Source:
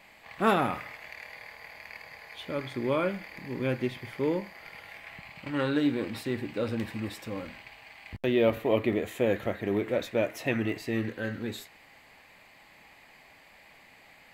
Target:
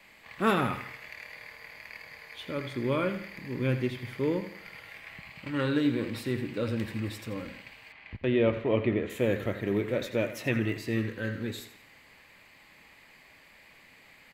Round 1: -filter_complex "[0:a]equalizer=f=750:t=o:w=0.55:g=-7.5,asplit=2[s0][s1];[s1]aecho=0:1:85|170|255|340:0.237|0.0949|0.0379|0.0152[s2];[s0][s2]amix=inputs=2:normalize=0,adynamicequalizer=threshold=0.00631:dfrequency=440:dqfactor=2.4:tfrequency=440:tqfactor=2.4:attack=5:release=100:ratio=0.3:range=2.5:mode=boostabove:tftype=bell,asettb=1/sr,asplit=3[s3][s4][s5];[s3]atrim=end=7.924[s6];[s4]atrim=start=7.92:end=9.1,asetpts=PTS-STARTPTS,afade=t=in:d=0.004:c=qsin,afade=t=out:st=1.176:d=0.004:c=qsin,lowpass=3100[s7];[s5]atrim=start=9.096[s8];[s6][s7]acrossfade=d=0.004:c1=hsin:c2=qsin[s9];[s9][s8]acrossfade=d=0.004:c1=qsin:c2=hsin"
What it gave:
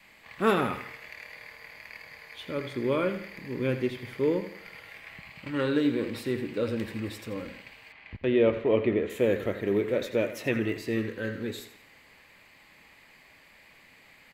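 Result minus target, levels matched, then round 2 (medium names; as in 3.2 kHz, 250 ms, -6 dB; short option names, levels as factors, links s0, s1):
125 Hz band -5.0 dB
-filter_complex "[0:a]equalizer=f=750:t=o:w=0.55:g=-7.5,asplit=2[s0][s1];[s1]aecho=0:1:85|170|255|340:0.237|0.0949|0.0379|0.0152[s2];[s0][s2]amix=inputs=2:normalize=0,adynamicequalizer=threshold=0.00631:dfrequency=120:dqfactor=2.4:tfrequency=120:tqfactor=2.4:attack=5:release=100:ratio=0.3:range=2.5:mode=boostabove:tftype=bell,asettb=1/sr,asplit=3[s3][s4][s5];[s3]atrim=end=7.924[s6];[s4]atrim=start=7.92:end=9.1,asetpts=PTS-STARTPTS,afade=t=in:d=0.004:c=qsin,afade=t=out:st=1.176:d=0.004:c=qsin,lowpass=3100[s7];[s5]atrim=start=9.096[s8];[s6][s7]acrossfade=d=0.004:c1=hsin:c2=qsin[s9];[s9][s8]acrossfade=d=0.004:c1=qsin:c2=hsin"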